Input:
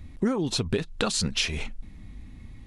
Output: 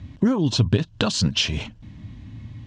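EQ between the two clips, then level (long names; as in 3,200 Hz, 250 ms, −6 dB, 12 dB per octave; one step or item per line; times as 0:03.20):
dynamic equaliser 1,800 Hz, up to −3 dB, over −43 dBFS, Q 0.81
bass and treble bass +11 dB, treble +8 dB
loudspeaker in its box 100–6,200 Hz, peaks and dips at 110 Hz +9 dB, 290 Hz +5 dB, 610 Hz +8 dB, 1,000 Hz +9 dB, 1,600 Hz +7 dB, 3,000 Hz +9 dB
−1.5 dB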